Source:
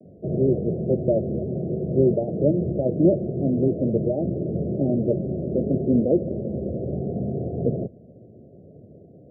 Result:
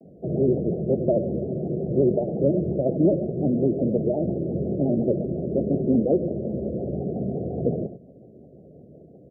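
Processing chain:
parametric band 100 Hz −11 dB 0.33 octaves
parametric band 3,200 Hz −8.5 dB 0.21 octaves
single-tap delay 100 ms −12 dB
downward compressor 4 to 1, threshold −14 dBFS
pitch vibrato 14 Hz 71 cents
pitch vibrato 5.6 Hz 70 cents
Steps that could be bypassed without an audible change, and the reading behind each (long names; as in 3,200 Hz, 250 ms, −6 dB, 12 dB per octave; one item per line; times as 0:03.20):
parametric band 3,200 Hz: nothing at its input above 760 Hz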